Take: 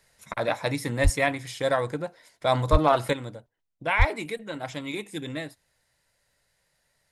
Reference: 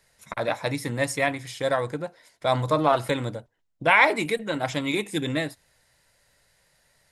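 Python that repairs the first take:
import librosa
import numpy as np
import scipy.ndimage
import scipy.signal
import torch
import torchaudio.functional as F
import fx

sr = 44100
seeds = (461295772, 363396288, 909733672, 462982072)

y = fx.fix_declip(x, sr, threshold_db=-8.0)
y = fx.highpass(y, sr, hz=140.0, slope=24, at=(1.03, 1.15), fade=0.02)
y = fx.highpass(y, sr, hz=140.0, slope=24, at=(2.71, 2.83), fade=0.02)
y = fx.highpass(y, sr, hz=140.0, slope=24, at=(3.98, 4.1), fade=0.02)
y = fx.fix_level(y, sr, at_s=3.13, step_db=7.0)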